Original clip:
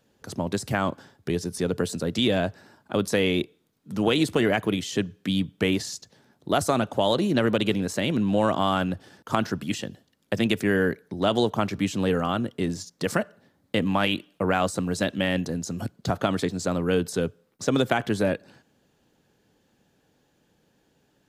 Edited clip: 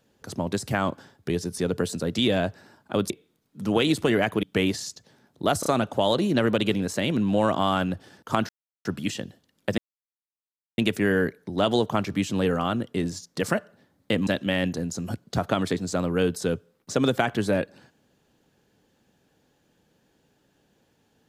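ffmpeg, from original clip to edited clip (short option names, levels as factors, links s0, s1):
-filter_complex "[0:a]asplit=8[s0][s1][s2][s3][s4][s5][s6][s7];[s0]atrim=end=3.102[s8];[s1]atrim=start=3.408:end=4.742[s9];[s2]atrim=start=5.488:end=6.692[s10];[s3]atrim=start=6.658:end=6.692[s11];[s4]atrim=start=6.658:end=9.49,asetpts=PTS-STARTPTS,afade=t=out:st=2.828:d=0.004:c=hsin,apad=pad_dur=0.36[s12];[s5]atrim=start=9.49:end=10.42,asetpts=PTS-STARTPTS,afade=t=in:d=0.004:c=hsin,afade=t=out:st=0.926:d=0.004:c=hsin,apad=pad_dur=1[s13];[s6]atrim=start=10.42:end=13.912,asetpts=PTS-STARTPTS,afade=t=in:d=0.004:c=hsin[s14];[s7]atrim=start=14.988[s15];[s8][s9]acrossfade=d=0.004:c1=hsin:c2=hsin[s16];[s16][s10]acrossfade=d=0.004:c1=hsin:c2=hsin[s17];[s17][s11]acrossfade=d=0.004:c1=hsin:c2=hsin[s18];[s12][s13][s14]concat=n=3:v=0:a=1[s19];[s18][s19]acrossfade=d=0.004:c1=hsin:c2=hsin[s20];[s20][s15]acrossfade=d=0.004:c1=hsin:c2=hsin"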